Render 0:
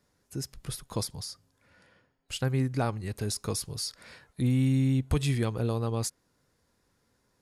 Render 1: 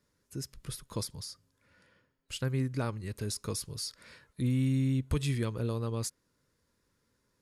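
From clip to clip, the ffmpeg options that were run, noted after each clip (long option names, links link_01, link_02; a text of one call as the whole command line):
ffmpeg -i in.wav -af "equalizer=frequency=750:width=6.6:gain=-13.5,volume=-3.5dB" out.wav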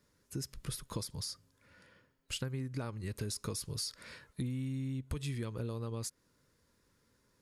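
ffmpeg -i in.wav -af "acompressor=threshold=-37dB:ratio=12,volume=3dB" out.wav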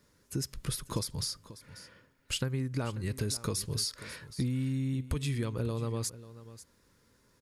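ffmpeg -i in.wav -af "aecho=1:1:540:0.158,volume=5.5dB" out.wav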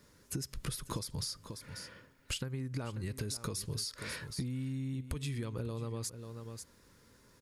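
ffmpeg -i in.wav -af "acompressor=threshold=-39dB:ratio=6,volume=4dB" out.wav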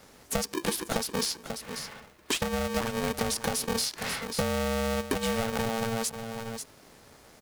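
ffmpeg -i in.wav -af "aeval=exprs='val(0)*sgn(sin(2*PI*340*n/s))':channel_layout=same,volume=8.5dB" out.wav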